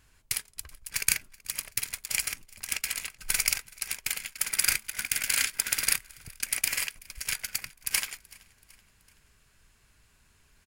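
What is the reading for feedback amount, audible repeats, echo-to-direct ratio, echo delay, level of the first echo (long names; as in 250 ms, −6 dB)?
51%, 2, −23.0 dB, 379 ms, −24.0 dB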